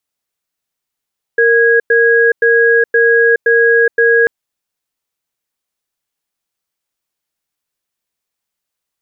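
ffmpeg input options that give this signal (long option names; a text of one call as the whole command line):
ffmpeg -f lavfi -i "aevalsrc='0.335*(sin(2*PI*464*t)+sin(2*PI*1650*t))*clip(min(mod(t,0.52),0.42-mod(t,0.52))/0.005,0,1)':duration=2.89:sample_rate=44100" out.wav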